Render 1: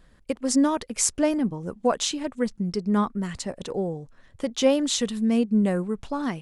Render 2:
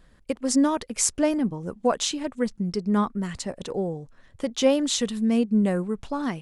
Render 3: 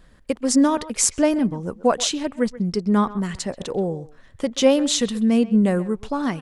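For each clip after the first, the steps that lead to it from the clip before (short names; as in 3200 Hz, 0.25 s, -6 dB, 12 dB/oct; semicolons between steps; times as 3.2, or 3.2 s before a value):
nothing audible
speakerphone echo 0.13 s, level -16 dB; gain +4 dB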